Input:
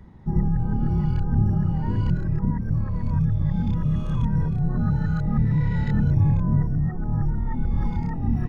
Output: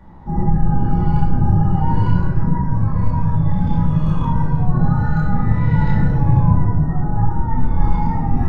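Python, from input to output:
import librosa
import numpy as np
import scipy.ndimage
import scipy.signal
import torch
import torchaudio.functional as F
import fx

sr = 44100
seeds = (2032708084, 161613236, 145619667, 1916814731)

y = fx.peak_eq(x, sr, hz=890.0, db=11.5, octaves=1.4)
y = fx.room_shoebox(y, sr, seeds[0], volume_m3=530.0, walls='mixed', distance_m=2.4)
y = y * 10.0 ** (-3.0 / 20.0)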